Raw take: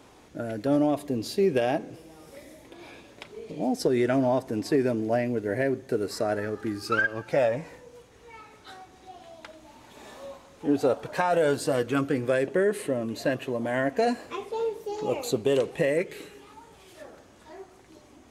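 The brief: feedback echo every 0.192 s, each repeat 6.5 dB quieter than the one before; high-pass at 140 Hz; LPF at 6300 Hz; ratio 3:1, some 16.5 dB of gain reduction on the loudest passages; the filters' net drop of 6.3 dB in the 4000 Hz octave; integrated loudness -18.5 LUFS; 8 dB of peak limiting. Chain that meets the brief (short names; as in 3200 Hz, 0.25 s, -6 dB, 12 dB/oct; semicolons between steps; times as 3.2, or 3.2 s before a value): HPF 140 Hz; LPF 6300 Hz; bell 4000 Hz -7.5 dB; compressor 3:1, threshold -43 dBFS; limiter -33.5 dBFS; feedback echo 0.192 s, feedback 47%, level -6.5 dB; gain +25.5 dB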